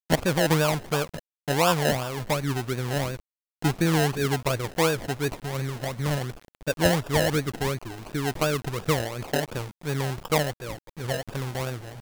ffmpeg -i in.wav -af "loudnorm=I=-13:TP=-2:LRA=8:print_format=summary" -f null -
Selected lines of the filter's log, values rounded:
Input Integrated:    -27.1 LUFS
Input True Peak:      -5.6 dBTP
Input LRA:             3.7 LU
Input Threshold:     -37.3 LUFS